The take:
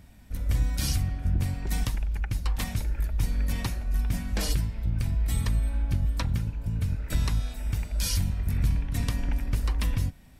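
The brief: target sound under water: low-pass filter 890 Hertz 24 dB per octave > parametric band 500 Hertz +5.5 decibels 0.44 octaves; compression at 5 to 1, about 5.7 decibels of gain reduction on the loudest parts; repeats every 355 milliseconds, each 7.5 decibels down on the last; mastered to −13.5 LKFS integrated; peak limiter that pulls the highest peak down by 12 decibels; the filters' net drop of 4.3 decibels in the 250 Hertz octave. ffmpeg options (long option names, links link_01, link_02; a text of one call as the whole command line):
ffmpeg -i in.wav -af "equalizer=frequency=250:width_type=o:gain=-7,acompressor=threshold=-27dB:ratio=5,alimiter=level_in=6dB:limit=-24dB:level=0:latency=1,volume=-6dB,lowpass=frequency=890:width=0.5412,lowpass=frequency=890:width=1.3066,equalizer=frequency=500:width_type=o:width=0.44:gain=5.5,aecho=1:1:355|710|1065|1420|1775:0.422|0.177|0.0744|0.0312|0.0131,volume=25.5dB" out.wav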